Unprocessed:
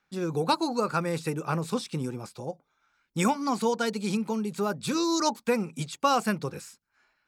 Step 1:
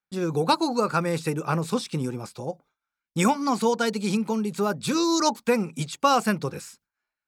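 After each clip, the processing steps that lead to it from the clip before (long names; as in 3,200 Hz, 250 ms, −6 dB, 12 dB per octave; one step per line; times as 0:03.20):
noise gate with hold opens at −54 dBFS
level +3.5 dB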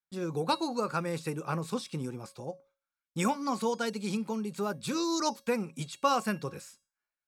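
tuned comb filter 550 Hz, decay 0.34 s, mix 60%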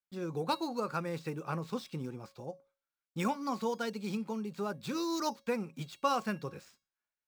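running median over 5 samples
level −3.5 dB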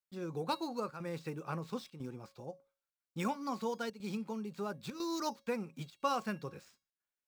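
square-wave tremolo 1 Hz, depth 65%, duty 90%
level −3 dB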